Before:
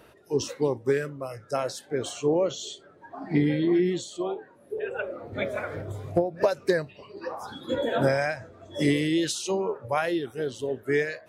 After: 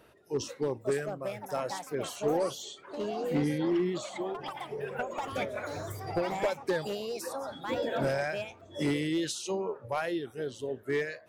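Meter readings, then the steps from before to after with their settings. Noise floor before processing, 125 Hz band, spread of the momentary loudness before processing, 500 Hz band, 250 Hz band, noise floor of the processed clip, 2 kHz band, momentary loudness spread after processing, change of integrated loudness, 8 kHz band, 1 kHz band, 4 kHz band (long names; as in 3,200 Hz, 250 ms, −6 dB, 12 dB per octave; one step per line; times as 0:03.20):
−55 dBFS, −6.0 dB, 14 LU, −5.0 dB, −5.5 dB, −55 dBFS, −5.0 dB, 8 LU, −5.5 dB, −4.5 dB, −2.0 dB, −4.5 dB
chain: gain into a clipping stage and back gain 17.5 dB
delay with pitch and tempo change per echo 631 ms, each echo +6 semitones, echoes 2, each echo −6 dB
level −5.5 dB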